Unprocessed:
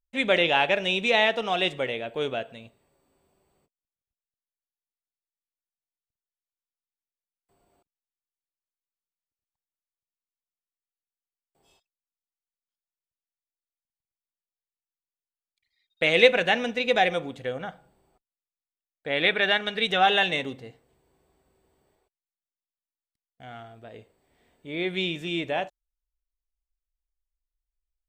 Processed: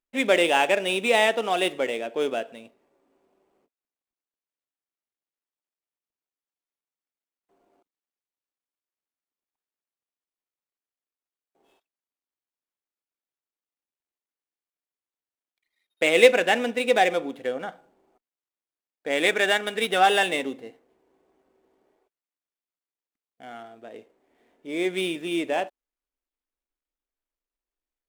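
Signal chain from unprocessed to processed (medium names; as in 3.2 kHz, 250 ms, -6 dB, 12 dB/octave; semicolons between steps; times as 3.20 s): median filter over 9 samples; resonant low shelf 180 Hz -13.5 dB, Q 1.5; trim +1.5 dB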